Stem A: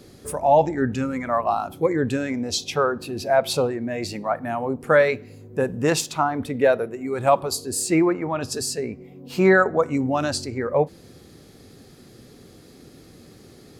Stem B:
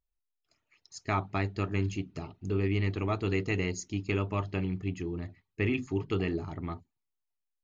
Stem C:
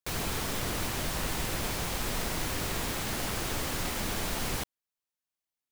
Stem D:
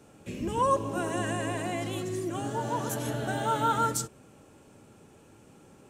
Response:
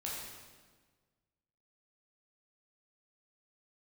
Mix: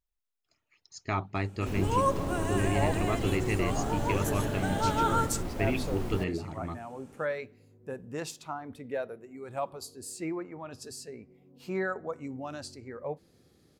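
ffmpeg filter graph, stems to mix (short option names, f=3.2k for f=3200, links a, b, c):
-filter_complex "[0:a]adelay=2300,volume=-16dB[a];[1:a]volume=-1dB[b];[2:a]tiltshelf=f=1.2k:g=9.5,adelay=1600,volume=-8.5dB[c];[3:a]adelay=1350,volume=-1.5dB[d];[a][b][c][d]amix=inputs=4:normalize=0"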